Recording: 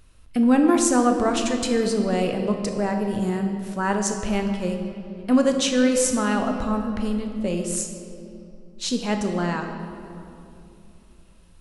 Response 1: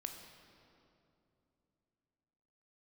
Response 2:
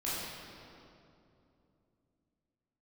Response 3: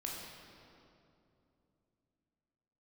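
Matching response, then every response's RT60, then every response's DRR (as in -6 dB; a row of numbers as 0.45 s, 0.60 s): 1; 2.9 s, 2.8 s, 2.8 s; 4.0 dB, -10.0 dB, -2.5 dB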